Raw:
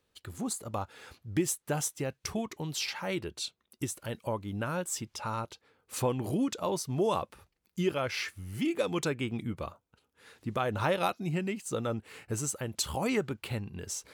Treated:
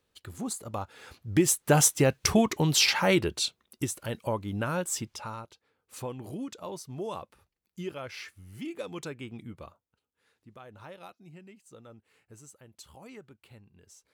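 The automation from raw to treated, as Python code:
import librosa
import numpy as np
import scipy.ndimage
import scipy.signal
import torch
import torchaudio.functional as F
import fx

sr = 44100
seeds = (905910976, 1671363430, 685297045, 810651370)

y = fx.gain(x, sr, db=fx.line((0.96, 0.0), (1.82, 11.5), (3.02, 11.5), (3.88, 3.0), (5.04, 3.0), (5.44, -7.5), (9.62, -7.5), (10.48, -18.0)))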